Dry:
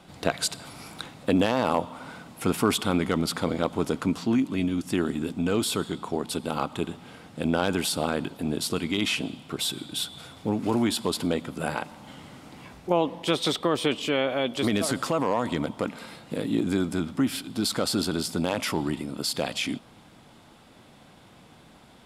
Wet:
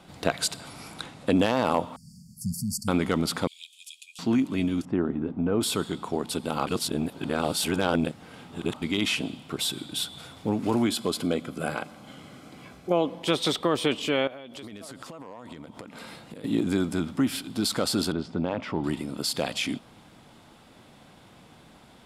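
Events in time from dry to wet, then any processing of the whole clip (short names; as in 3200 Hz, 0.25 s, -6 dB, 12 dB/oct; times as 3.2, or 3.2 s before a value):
0.61–1.42 steep low-pass 12000 Hz 48 dB/oct
1.96–2.88 brick-wall FIR band-stop 230–4400 Hz
3.47–4.19 rippled Chebyshev high-pass 2400 Hz, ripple 6 dB
4.85–5.61 LPF 1200 Hz
6.67–8.82 reverse
10.86–13.23 notch comb 910 Hz
14.27–16.44 compressor 16:1, threshold -37 dBFS
18.12–18.84 tape spacing loss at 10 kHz 33 dB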